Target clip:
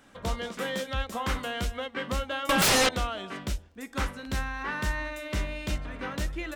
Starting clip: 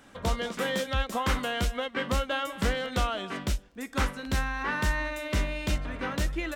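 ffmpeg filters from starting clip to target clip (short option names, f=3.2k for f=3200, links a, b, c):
-filter_complex "[0:a]asettb=1/sr,asplit=3[a][b][c];[a]atrim=end=2.494[d];[b]atrim=start=2.49:end=2.89,asetpts=PTS-STARTPTS,afade=t=in:d=0.004:c=qsin,afade=t=out:st=0.396:d=0.004:c=qsin,aeval=exprs='0.158*sin(PI/2*8.91*val(0)/0.158)':c=same[e];[c]atrim=start=2.886[f];[d][e]acrossfade=d=0.004:c1=hsin:c2=qsin[g];[g][f]acrossfade=d=0.004:c1=qsin:c2=hsin,bandreject=f=82.24:t=h:w=4,bandreject=f=164.48:t=h:w=4,bandreject=f=246.72:t=h:w=4,bandreject=f=328.96:t=h:w=4,bandreject=f=411.2:t=h:w=4,bandreject=f=493.44:t=h:w=4,bandreject=f=575.68:t=h:w=4,bandreject=f=657.92:t=h:w=4,bandreject=f=740.16:t=h:w=4,bandreject=f=822.4:t=h:w=4,bandreject=f=904.64:t=h:w=4,bandreject=f=986.88:t=h:w=4,volume=-2.5dB"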